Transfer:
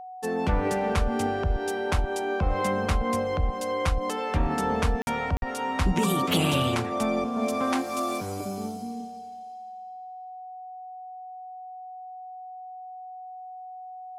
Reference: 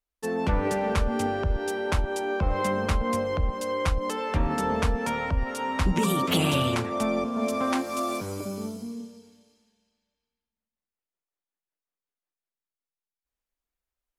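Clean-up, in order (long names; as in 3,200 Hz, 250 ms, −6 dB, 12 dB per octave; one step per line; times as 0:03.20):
notch filter 740 Hz, Q 30
repair the gap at 0:05.02/0:05.37, 51 ms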